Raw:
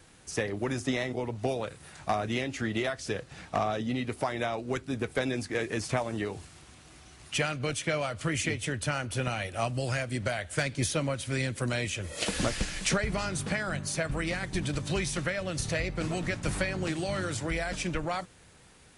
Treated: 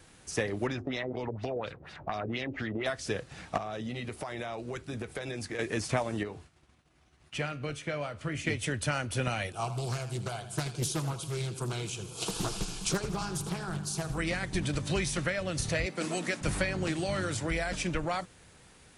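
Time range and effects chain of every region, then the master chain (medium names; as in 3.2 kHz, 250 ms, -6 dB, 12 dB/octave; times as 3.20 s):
0.67–2.86 s: LFO low-pass sine 4.2 Hz 440–5000 Hz + compression 4:1, threshold -30 dBFS
3.57–5.59 s: band-stop 260 Hz, Q 7.4 + compression 10:1, threshold -32 dBFS
6.23–8.47 s: treble shelf 4.6 kHz -10.5 dB + feedback comb 73 Hz, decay 0.4 s, mix 50% + expander -52 dBFS
9.52–14.18 s: static phaser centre 380 Hz, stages 8 + two-band feedback delay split 310 Hz, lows 276 ms, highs 81 ms, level -12 dB + loudspeaker Doppler distortion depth 0.62 ms
15.86–16.41 s: high-pass 190 Hz 24 dB/octave + treble shelf 6.7 kHz +9.5 dB
whole clip: none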